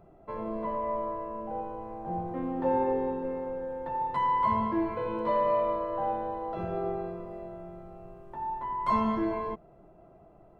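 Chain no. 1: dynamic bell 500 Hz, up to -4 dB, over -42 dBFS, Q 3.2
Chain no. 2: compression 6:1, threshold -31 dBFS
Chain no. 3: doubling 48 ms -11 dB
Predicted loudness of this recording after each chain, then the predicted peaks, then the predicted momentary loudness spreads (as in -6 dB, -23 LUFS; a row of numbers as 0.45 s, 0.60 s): -32.0 LUFS, -36.0 LUFS, -31.5 LUFS; -16.0 dBFS, -22.5 dBFS, -16.5 dBFS; 15 LU, 8 LU, 14 LU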